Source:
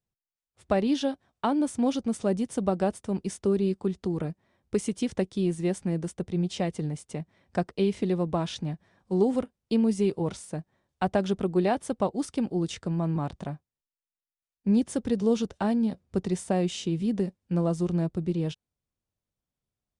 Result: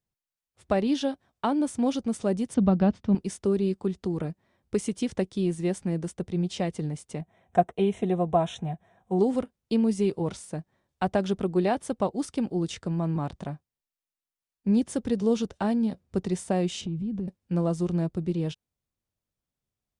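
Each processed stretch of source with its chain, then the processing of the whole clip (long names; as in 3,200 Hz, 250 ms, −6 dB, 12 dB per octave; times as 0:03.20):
0:02.54–0:03.15: low-pass filter 4,700 Hz 24 dB per octave + low shelf with overshoot 300 Hz +6.5 dB, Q 1.5
0:07.21–0:09.19: Butterworth band-reject 4,700 Hz, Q 2.2 + parametric band 710 Hz +11.5 dB 0.53 octaves + notch comb filter 290 Hz
0:16.81–0:17.28: bass and treble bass +15 dB, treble −10 dB + downward compressor 3 to 1, threshold −33 dBFS + notch filter 1,900 Hz, Q 7.5
whole clip: no processing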